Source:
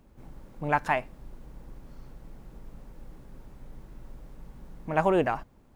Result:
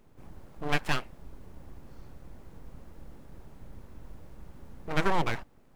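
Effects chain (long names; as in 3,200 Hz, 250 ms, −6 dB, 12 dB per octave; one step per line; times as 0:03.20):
full-wave rectification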